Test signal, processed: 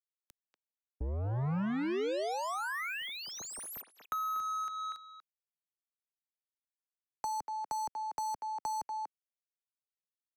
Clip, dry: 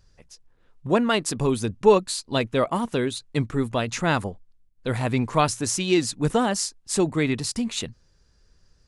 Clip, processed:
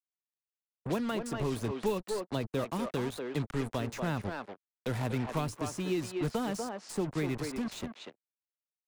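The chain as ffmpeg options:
-filter_complex "[0:a]acrusher=bits=4:mix=0:aa=0.5,asplit=2[a][b];[b]adelay=240,highpass=300,lowpass=3.4k,asoftclip=type=hard:threshold=-14dB,volume=-6dB[c];[a][c]amix=inputs=2:normalize=0,acrossover=split=160|430|1600[d][e][f][g];[d]acompressor=threshold=-29dB:ratio=4[h];[e]acompressor=threshold=-30dB:ratio=4[i];[f]acompressor=threshold=-32dB:ratio=4[j];[g]acompressor=threshold=-40dB:ratio=4[k];[h][i][j][k]amix=inputs=4:normalize=0,volume=-5.5dB"

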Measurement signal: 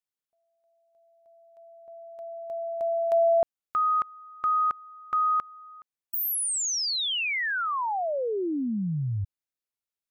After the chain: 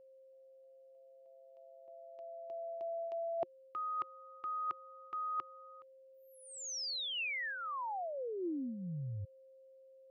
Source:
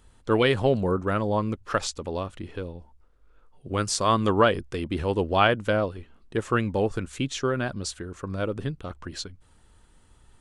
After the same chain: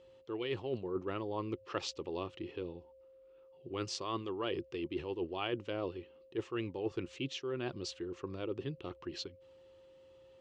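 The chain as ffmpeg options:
-af "highpass=120,equalizer=f=210:t=q:w=4:g=-9,equalizer=f=360:t=q:w=4:g=10,equalizer=f=610:t=q:w=4:g=-5,equalizer=f=1.5k:t=q:w=4:g=-8,equalizer=f=2.8k:t=q:w=4:g=7,lowpass=f=5.6k:w=0.5412,lowpass=f=5.6k:w=1.3066,aeval=exprs='val(0)+0.00282*sin(2*PI*530*n/s)':c=same,areverse,acompressor=threshold=-32dB:ratio=16:attack=79:release=192:knee=6:detection=peak,areverse,volume=-6.5dB"

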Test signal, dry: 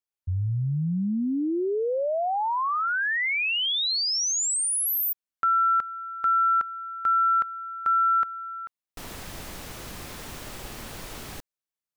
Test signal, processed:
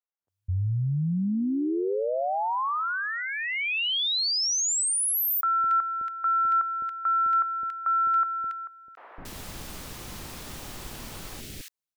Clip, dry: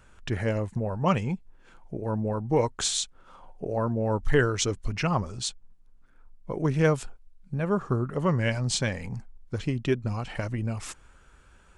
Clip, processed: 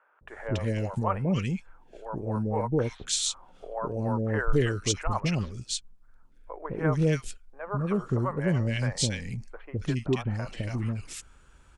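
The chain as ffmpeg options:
-filter_complex "[0:a]acrossover=split=540|1800[a][b][c];[a]adelay=210[d];[c]adelay=280[e];[d][b][e]amix=inputs=3:normalize=0"

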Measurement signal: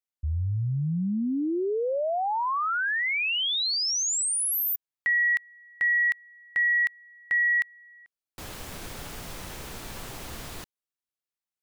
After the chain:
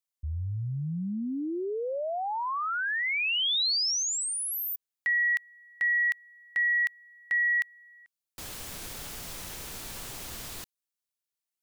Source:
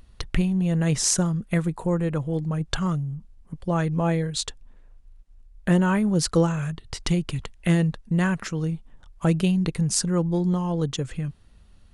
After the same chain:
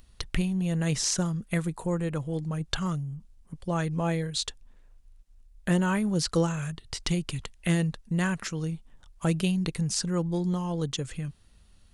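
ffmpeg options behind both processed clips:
-filter_complex "[0:a]acrossover=split=5100[a][b];[b]acompressor=threshold=-37dB:ratio=4:attack=1:release=60[c];[a][c]amix=inputs=2:normalize=0,highshelf=f=3k:g=9,volume=-5dB"

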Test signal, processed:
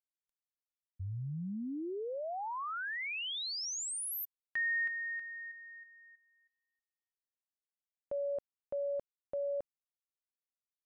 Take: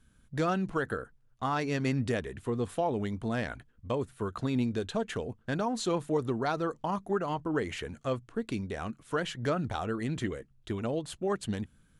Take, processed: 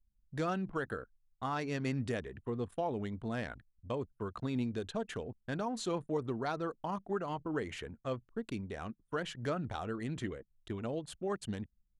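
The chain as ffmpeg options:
-af "anlmdn=0.0398,volume=-5.5dB"

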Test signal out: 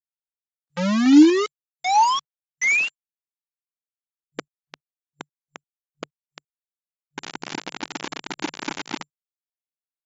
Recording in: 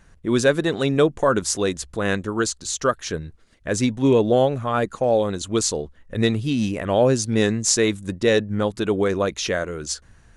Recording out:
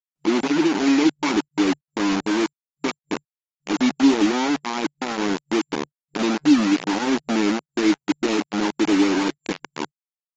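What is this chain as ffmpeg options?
-filter_complex "[0:a]asplit=2[a][b];[b]aeval=exprs='0.668*sin(PI/2*3.55*val(0)/0.668)':c=same,volume=-3.5dB[c];[a][c]amix=inputs=2:normalize=0,asplit=3[d][e][f];[d]bandpass=f=300:t=q:w=8,volume=0dB[g];[e]bandpass=f=870:t=q:w=8,volume=-6dB[h];[f]bandpass=f=2.24k:t=q:w=8,volume=-9dB[i];[g][h][i]amix=inputs=3:normalize=0,acrusher=bits=3:mix=0:aa=0.000001,afftfilt=real='re*between(b*sr/4096,150,7300)':imag='im*between(b*sr/4096,150,7300)':win_size=4096:overlap=0.75" -ar 48000 -c:a libopus -b:a 24k

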